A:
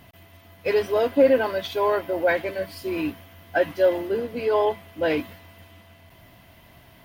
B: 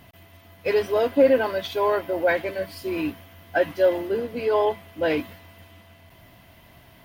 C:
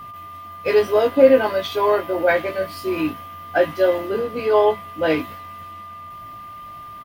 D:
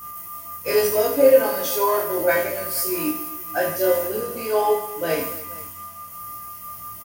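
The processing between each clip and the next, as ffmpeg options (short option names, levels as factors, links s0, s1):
-af anull
-filter_complex "[0:a]asplit=2[s0][s1];[s1]adelay=19,volume=0.562[s2];[s0][s2]amix=inputs=2:normalize=0,aeval=exprs='val(0)+0.0141*sin(2*PI*1200*n/s)':c=same,volume=1.33"
-af "aexciter=amount=10.7:drive=5.8:freq=5500,flanger=delay=16.5:depth=2.5:speed=0.63,aecho=1:1:30|78|154.8|277.7|474.3:0.631|0.398|0.251|0.158|0.1,volume=0.75"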